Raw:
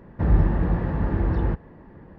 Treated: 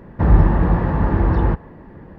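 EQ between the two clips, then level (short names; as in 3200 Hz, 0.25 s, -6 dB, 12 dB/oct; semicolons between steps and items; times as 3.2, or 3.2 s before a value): dynamic EQ 1000 Hz, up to +5 dB, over -49 dBFS, Q 1.6; +6.0 dB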